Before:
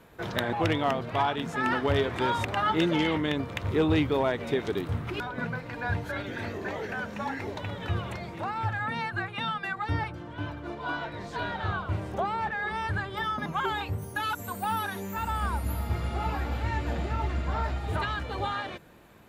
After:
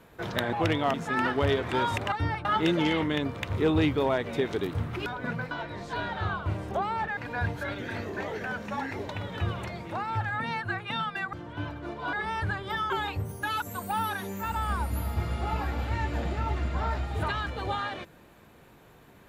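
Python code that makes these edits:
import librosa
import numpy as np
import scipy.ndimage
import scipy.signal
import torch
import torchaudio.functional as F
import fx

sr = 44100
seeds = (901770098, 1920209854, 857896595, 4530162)

y = fx.edit(x, sr, fx.cut(start_s=0.94, length_s=0.47),
    fx.move(start_s=9.81, length_s=0.33, to_s=2.59),
    fx.move(start_s=10.94, length_s=1.66, to_s=5.65),
    fx.cut(start_s=13.37, length_s=0.26), tone=tone)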